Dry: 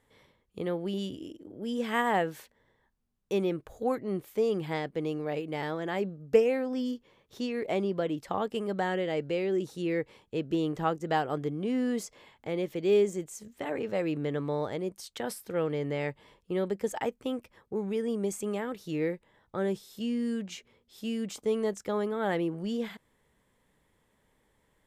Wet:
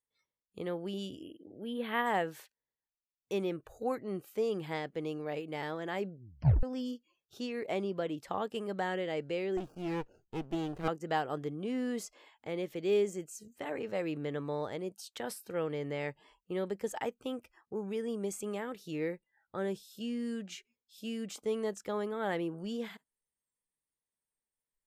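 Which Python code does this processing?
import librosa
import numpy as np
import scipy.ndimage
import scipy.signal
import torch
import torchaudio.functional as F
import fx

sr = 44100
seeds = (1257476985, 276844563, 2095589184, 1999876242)

y = fx.spec_box(x, sr, start_s=1.22, length_s=0.84, low_hz=4500.0, high_hz=9200.0, gain_db=-23)
y = fx.running_max(y, sr, window=33, at=(9.57, 10.88))
y = fx.edit(y, sr, fx.tape_stop(start_s=6.12, length_s=0.51), tone=tone)
y = fx.noise_reduce_blind(y, sr, reduce_db=26)
y = fx.low_shelf(y, sr, hz=440.0, db=-3.5)
y = y * librosa.db_to_amplitude(-3.0)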